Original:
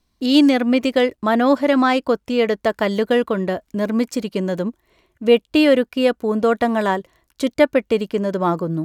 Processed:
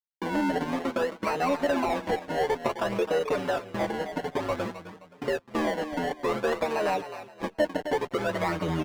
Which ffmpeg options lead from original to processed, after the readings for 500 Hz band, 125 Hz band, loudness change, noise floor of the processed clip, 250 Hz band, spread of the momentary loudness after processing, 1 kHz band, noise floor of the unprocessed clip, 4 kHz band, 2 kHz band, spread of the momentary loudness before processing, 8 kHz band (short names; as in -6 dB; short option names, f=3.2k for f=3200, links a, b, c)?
-9.5 dB, -7.5 dB, -10.5 dB, -55 dBFS, -14.0 dB, 5 LU, -6.0 dB, -69 dBFS, -12.5 dB, -7.5 dB, 9 LU, -5.0 dB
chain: -filter_complex "[0:a]equalizer=f=62:t=o:w=0.86:g=9.5,acompressor=threshold=-17dB:ratio=10,aresample=16000,acrusher=bits=5:mix=0:aa=0.000001,aresample=44100,acrossover=split=510|1700[a][b][c];[a]acompressor=threshold=-29dB:ratio=4[d];[b]acompressor=threshold=-25dB:ratio=4[e];[c]acompressor=threshold=-43dB:ratio=4[f];[d][e][f]amix=inputs=3:normalize=0,aecho=1:1:6.7:0.53,acrusher=samples=25:mix=1:aa=0.000001:lfo=1:lforange=25:lforate=0.55,aecho=1:1:262|524|786:0.2|0.0579|0.0168,asplit=2[g][h];[h]highpass=f=720:p=1,volume=11dB,asoftclip=type=tanh:threshold=-15dB[i];[g][i]amix=inputs=2:normalize=0,lowpass=f=1.4k:p=1,volume=-6dB,tremolo=f=82:d=0.919,asplit=2[j][k];[k]adelay=5.4,afreqshift=-1.1[l];[j][l]amix=inputs=2:normalize=1,volume=5.5dB"